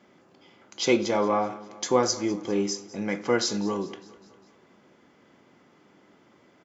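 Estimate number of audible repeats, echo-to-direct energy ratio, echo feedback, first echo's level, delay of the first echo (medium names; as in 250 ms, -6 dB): 4, -18.5 dB, 57%, -20.0 dB, 202 ms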